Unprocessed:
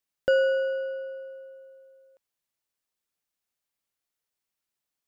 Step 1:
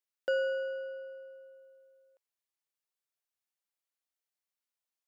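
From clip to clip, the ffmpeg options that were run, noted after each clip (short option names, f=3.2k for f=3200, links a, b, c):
-af "highpass=420,volume=-7dB"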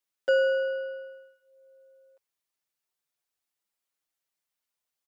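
-filter_complex "[0:a]asplit=2[a][b];[b]adelay=6.8,afreqshift=-0.52[c];[a][c]amix=inputs=2:normalize=1,volume=7.5dB"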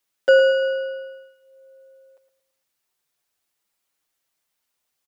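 -filter_complex "[0:a]asplit=2[a][b];[b]adelay=113,lowpass=f=3.4k:p=1,volume=-10dB,asplit=2[c][d];[d]adelay=113,lowpass=f=3.4k:p=1,volume=0.39,asplit=2[e][f];[f]adelay=113,lowpass=f=3.4k:p=1,volume=0.39,asplit=2[g][h];[h]adelay=113,lowpass=f=3.4k:p=1,volume=0.39[i];[a][c][e][g][i]amix=inputs=5:normalize=0,volume=9dB"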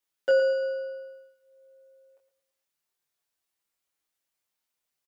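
-filter_complex "[0:a]asplit=2[a][b];[b]adelay=22,volume=-3dB[c];[a][c]amix=inputs=2:normalize=0,volume=-8.5dB"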